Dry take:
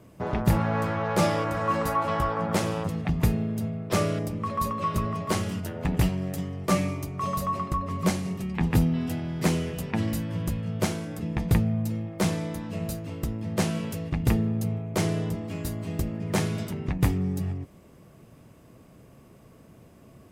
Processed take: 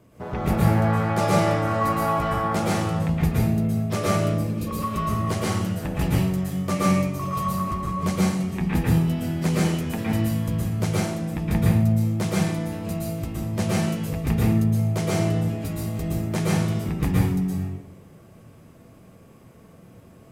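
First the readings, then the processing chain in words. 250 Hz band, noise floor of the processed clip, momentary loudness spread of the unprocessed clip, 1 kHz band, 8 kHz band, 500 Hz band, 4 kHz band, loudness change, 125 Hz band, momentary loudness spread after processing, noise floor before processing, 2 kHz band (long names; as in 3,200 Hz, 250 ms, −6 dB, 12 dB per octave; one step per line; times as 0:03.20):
+4.5 dB, −49 dBFS, 7 LU, +3.0 dB, +2.5 dB, +3.0 dB, +2.5 dB, +4.0 dB, +5.0 dB, 7 LU, −53 dBFS, +3.0 dB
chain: healed spectral selection 0:04.39–0:04.65, 290–2,200 Hz before
dense smooth reverb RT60 0.68 s, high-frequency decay 0.85×, pre-delay 105 ms, DRR −5.5 dB
level −3.5 dB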